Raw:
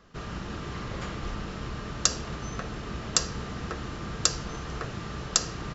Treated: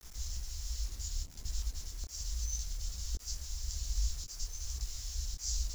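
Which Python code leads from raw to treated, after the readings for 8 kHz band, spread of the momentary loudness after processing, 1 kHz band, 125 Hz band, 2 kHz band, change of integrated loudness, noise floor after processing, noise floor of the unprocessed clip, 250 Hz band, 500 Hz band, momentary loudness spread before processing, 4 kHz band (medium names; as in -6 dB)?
no reading, 5 LU, -26.5 dB, -5.5 dB, -21.5 dB, -8.5 dB, -49 dBFS, -38 dBFS, -26.5 dB, -27.0 dB, 10 LU, -10.5 dB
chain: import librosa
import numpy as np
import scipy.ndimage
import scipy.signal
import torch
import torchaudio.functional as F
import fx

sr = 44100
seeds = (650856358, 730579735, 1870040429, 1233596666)

y = scipy.signal.sosfilt(scipy.signal.cheby2(4, 70, [190.0, 1500.0], 'bandstop', fs=sr, output='sos'), x)
y = fx.over_compress(y, sr, threshold_db=-46.0, ratio=-0.5)
y = y * (1.0 - 0.34 / 2.0 + 0.34 / 2.0 * np.cos(2.0 * np.pi * 0.73 * (np.arange(len(y)) / sr)))
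y = fx.quant_dither(y, sr, seeds[0], bits=10, dither='none')
y = fx.detune_double(y, sr, cents=43)
y = y * 10.0 ** (12.5 / 20.0)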